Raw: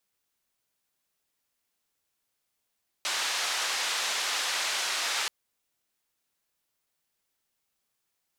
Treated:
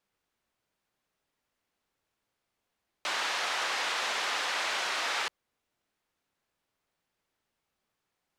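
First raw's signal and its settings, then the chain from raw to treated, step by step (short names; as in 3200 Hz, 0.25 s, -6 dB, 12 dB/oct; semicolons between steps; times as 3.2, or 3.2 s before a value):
noise band 740–5500 Hz, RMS -30 dBFS 2.23 s
LPF 1800 Hz 6 dB/oct; in parallel at -2 dB: limiter -29.5 dBFS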